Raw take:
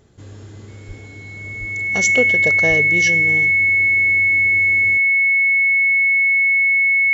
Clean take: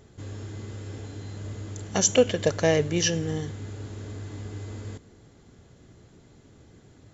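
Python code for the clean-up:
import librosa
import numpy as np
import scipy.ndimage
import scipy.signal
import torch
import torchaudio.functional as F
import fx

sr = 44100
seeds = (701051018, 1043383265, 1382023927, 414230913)

y = fx.notch(x, sr, hz=2200.0, q=30.0)
y = fx.highpass(y, sr, hz=140.0, slope=24, at=(0.87, 0.99), fade=0.02)
y = fx.highpass(y, sr, hz=140.0, slope=24, at=(1.59, 1.71), fade=0.02)
y = fx.highpass(y, sr, hz=140.0, slope=24, at=(2.68, 2.8), fade=0.02)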